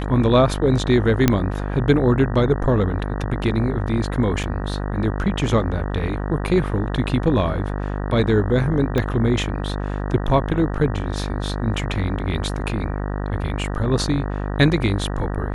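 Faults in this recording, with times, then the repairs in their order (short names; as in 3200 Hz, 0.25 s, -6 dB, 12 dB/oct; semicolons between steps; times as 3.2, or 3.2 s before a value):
buzz 50 Hz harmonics 38 -25 dBFS
1.28 pop -1 dBFS
4.43–4.44 gap 6.6 ms
8.98 pop -9 dBFS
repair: de-click; de-hum 50 Hz, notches 38; interpolate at 4.43, 6.6 ms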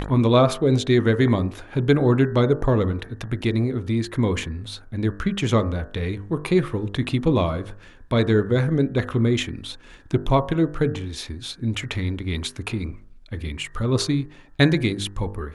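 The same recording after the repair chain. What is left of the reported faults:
8.98 pop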